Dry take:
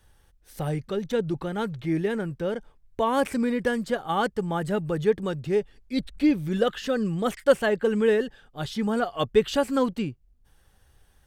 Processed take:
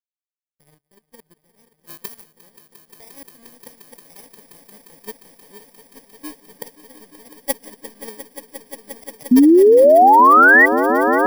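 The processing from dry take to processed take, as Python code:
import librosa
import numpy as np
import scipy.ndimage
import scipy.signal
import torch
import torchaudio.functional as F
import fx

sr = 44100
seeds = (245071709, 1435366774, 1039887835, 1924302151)

y = fx.bit_reversed(x, sr, seeds[0], block=32)
y = fx.tilt_eq(y, sr, slope=2.5, at=(1.74, 2.32))
y = fx.power_curve(y, sr, exponent=3.0)
y = fx.spec_paint(y, sr, seeds[1], shape='rise', start_s=9.31, length_s=1.35, low_hz=240.0, high_hz=2000.0, level_db=-12.0)
y = fx.echo_swell(y, sr, ms=176, loudest=8, wet_db=-14.0)
y = y * 10.0 ** (3.0 / 20.0)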